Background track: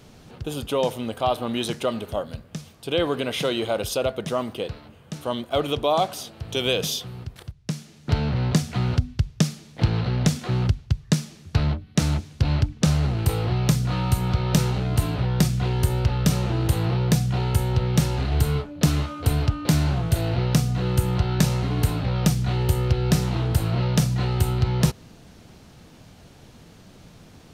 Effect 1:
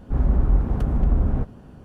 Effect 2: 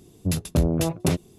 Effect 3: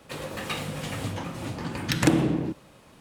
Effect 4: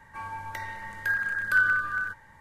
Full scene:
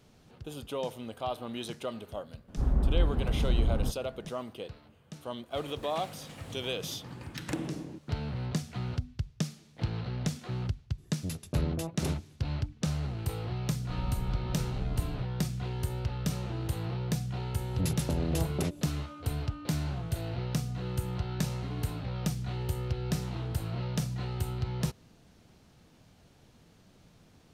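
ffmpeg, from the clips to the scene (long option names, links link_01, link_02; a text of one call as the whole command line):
ffmpeg -i bed.wav -i cue0.wav -i cue1.wav -i cue2.wav -filter_complex "[1:a]asplit=2[link_01][link_02];[2:a]asplit=2[link_03][link_04];[0:a]volume=-11.5dB[link_05];[link_04]acompressor=threshold=-23dB:ratio=6:attack=3.2:release=140:knee=1:detection=peak[link_06];[link_01]atrim=end=1.84,asetpts=PTS-STARTPTS,volume=-7dB,afade=type=in:duration=0.02,afade=type=out:start_time=1.82:duration=0.02,adelay=2470[link_07];[3:a]atrim=end=3,asetpts=PTS-STARTPTS,volume=-14dB,afade=type=in:duration=0.004:curve=hsin,afade=type=out:start_time=2.996:duration=0.004:curve=hsin,adelay=5460[link_08];[link_03]atrim=end=1.38,asetpts=PTS-STARTPTS,volume=-11.5dB,afade=type=in:duration=0.004:curve=hsin,afade=type=out:start_time=1.376:duration=0.004:curve=hsin,adelay=484218S[link_09];[link_02]atrim=end=1.84,asetpts=PTS-STARTPTS,volume=-16.5dB,afade=type=in:duration=0.004:curve=hsin,afade=type=out:start_time=1.836:duration=0.004:curve=hsin,adelay=13790[link_10];[link_06]atrim=end=1.38,asetpts=PTS-STARTPTS,volume=-3dB,afade=type=in:duration=0.004:curve=hsin,afade=type=out:start_time=1.376:duration=0.004:curve=hsin,adelay=17540[link_11];[link_05][link_07][link_08][link_09][link_10][link_11]amix=inputs=6:normalize=0" out.wav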